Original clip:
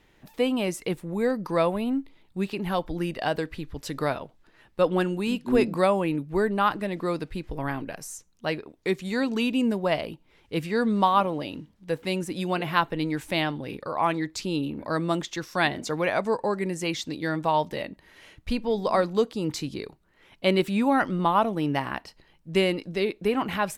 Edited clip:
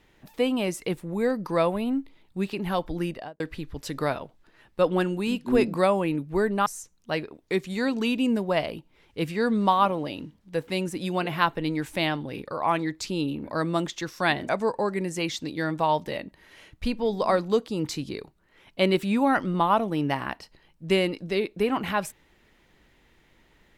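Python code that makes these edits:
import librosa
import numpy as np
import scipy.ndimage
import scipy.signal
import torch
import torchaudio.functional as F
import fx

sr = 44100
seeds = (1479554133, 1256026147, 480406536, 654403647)

y = fx.studio_fade_out(x, sr, start_s=3.04, length_s=0.36)
y = fx.edit(y, sr, fx.cut(start_s=6.66, length_s=1.35),
    fx.cut(start_s=15.84, length_s=0.3), tone=tone)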